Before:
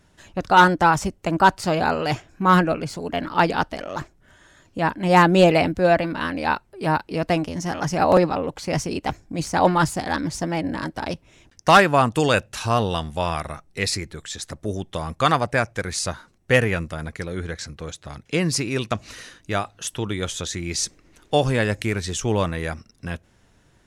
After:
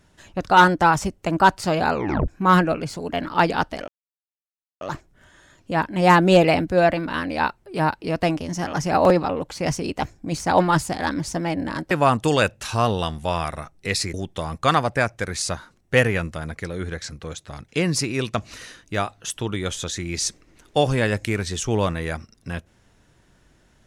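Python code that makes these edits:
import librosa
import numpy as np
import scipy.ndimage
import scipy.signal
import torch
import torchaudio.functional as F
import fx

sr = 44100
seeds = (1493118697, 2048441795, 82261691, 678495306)

y = fx.edit(x, sr, fx.tape_stop(start_s=1.94, length_s=0.34),
    fx.insert_silence(at_s=3.88, length_s=0.93),
    fx.cut(start_s=10.98, length_s=0.85),
    fx.cut(start_s=14.06, length_s=0.65), tone=tone)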